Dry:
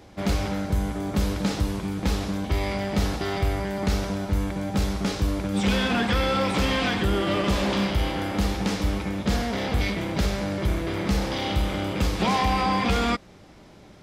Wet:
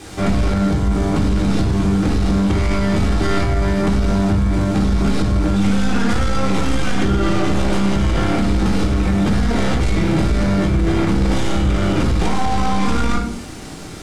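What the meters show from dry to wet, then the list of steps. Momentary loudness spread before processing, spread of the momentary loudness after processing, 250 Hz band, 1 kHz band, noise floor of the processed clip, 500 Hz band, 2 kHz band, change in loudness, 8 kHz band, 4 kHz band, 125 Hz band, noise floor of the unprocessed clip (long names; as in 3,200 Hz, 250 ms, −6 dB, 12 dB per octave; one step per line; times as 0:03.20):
5 LU, 3 LU, +9.0 dB, +4.0 dB, −31 dBFS, +5.5 dB, +3.5 dB, +7.5 dB, +5.0 dB, +1.5 dB, +9.0 dB, −49 dBFS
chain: stylus tracing distortion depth 0.22 ms
in parallel at −9 dB: bit-depth reduction 6 bits, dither triangular
on the sum: downward compressor, threshold −23 dBFS, peak gain reduction 8 dB
low-pass filter 9,300 Hz 24 dB per octave
rectangular room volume 600 cubic metres, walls furnished, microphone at 3.7 metres
brickwall limiter −11 dBFS, peak gain reduction 6.5 dB
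hollow resonant body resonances 250/1,400 Hz, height 7 dB, ringing for 30 ms
leveller curve on the samples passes 1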